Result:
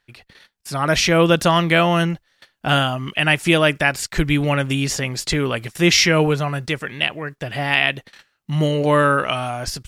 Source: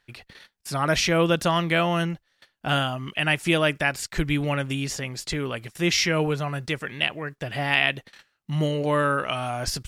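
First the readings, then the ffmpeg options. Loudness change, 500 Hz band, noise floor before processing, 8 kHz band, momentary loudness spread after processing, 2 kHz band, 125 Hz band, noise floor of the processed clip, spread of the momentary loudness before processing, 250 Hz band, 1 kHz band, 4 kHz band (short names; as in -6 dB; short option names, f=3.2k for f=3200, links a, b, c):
+6.0 dB, +6.0 dB, -72 dBFS, +6.5 dB, 11 LU, +5.5 dB, +6.0 dB, -70 dBFS, 10 LU, +6.5 dB, +6.0 dB, +6.0 dB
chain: -af "dynaudnorm=f=330:g=5:m=11.5dB,volume=-1dB"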